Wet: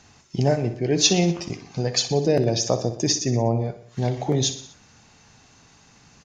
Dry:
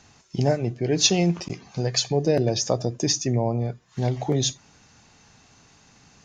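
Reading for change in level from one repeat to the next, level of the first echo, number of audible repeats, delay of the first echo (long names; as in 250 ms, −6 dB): −5.0 dB, −12.0 dB, 4, 61 ms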